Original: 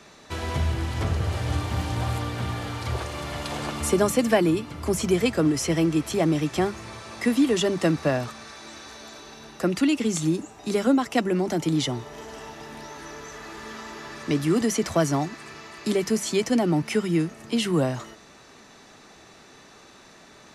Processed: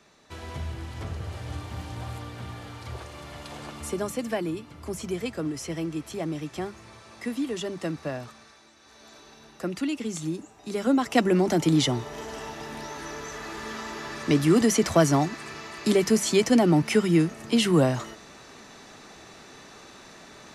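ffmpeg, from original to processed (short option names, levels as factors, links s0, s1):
-af "volume=2.99,afade=t=out:st=8.35:d=0.41:silence=0.446684,afade=t=in:st=8.76:d=0.38:silence=0.354813,afade=t=in:st=10.72:d=0.52:silence=0.334965"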